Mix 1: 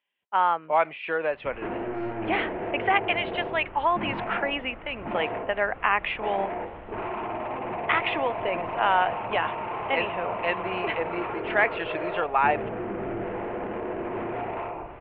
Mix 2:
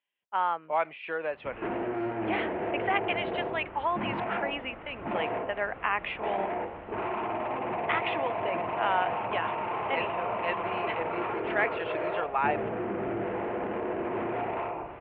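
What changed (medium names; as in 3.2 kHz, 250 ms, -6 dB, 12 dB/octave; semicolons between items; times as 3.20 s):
speech -5.5 dB; master: add high-pass 91 Hz 6 dB/octave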